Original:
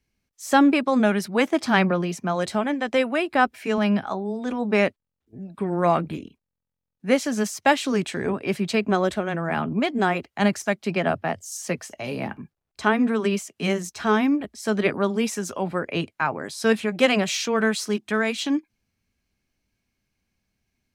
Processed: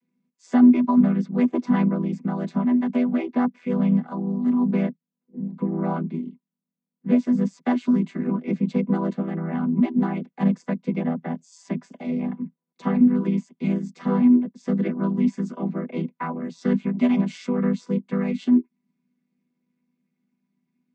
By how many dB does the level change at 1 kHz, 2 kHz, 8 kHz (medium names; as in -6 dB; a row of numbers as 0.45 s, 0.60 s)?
-8.0 dB, -14.0 dB, under -20 dB